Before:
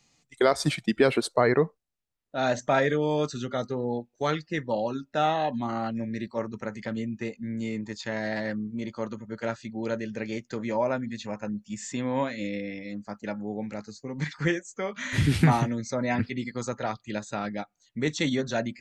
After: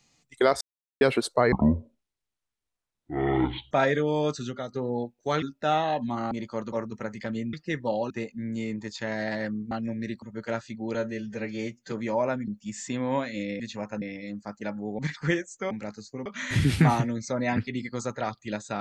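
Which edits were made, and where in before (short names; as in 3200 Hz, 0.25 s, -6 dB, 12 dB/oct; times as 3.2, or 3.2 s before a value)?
0.61–1.01 mute
1.52–2.66 speed 52%
3.39–3.67 fade out, to -10 dB
4.37–4.94 move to 7.15
5.83–6.34 swap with 8.76–9.17
9.89–10.54 stretch 1.5×
11.1–11.52 move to 12.64
13.61–14.16 move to 14.88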